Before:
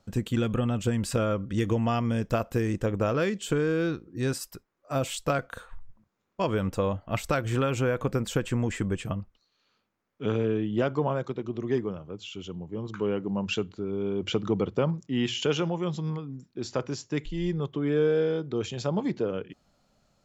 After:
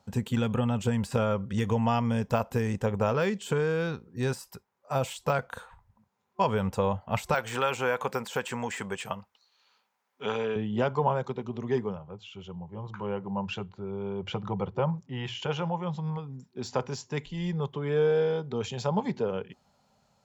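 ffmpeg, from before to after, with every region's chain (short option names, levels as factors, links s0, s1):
-filter_complex "[0:a]asettb=1/sr,asplit=3[s0][s1][s2];[s0]atrim=end=7.344[s3];[s1]atrim=start=7.34:end=10.56,asetpts=PTS-STARTPTS,afade=t=in:d=0.004:c=qsin,afade=t=out:st=3.216:d=0.004:c=qsin,highpass=f=930:p=1,acontrast=34[s4];[s2]atrim=start=10.556[s5];[s3][s4]acrossfade=d=0.004:c1=hsin:c2=qsin[s6];[s6][s5]acrossfade=d=0.004:c1=qsin:c2=hsin,asettb=1/sr,asplit=3[s7][s8][s9];[s7]atrim=end=11.964[s10];[s8]atrim=start=11.96:end=16.17,asetpts=PTS-STARTPTS,afade=t=in:d=0.004:c=qsin,afade=t=out:st=4.206:d=0.004:c=qsin,lowpass=f=1800:p=1,equalizer=f=240:t=o:w=0.27:g=-14,bandreject=f=430:w=5.4[s11];[s9]atrim=start=16.166[s12];[s10][s11]acrossfade=d=0.004:c1=hsin:c2=qsin[s13];[s13][s12]acrossfade=d=0.004:c1=qsin:c2=hsin,highpass=68,deesser=0.85,superequalizer=6b=0.282:9b=2.24"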